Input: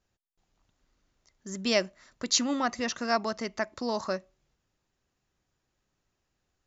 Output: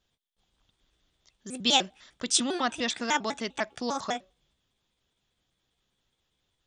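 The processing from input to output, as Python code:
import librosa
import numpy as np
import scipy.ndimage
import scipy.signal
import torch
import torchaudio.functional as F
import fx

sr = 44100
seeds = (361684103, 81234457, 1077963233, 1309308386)

y = fx.pitch_trill(x, sr, semitones=4.5, every_ms=100)
y = fx.peak_eq(y, sr, hz=3400.0, db=14.5, octaves=0.43)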